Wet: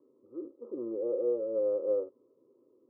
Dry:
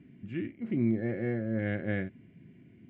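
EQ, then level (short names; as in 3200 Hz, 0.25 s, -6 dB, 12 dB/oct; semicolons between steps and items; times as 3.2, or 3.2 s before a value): resonant high-pass 510 Hz, resonance Q 4.9; Chebyshev low-pass 1300 Hz, order 10; fixed phaser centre 690 Hz, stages 6; 0.0 dB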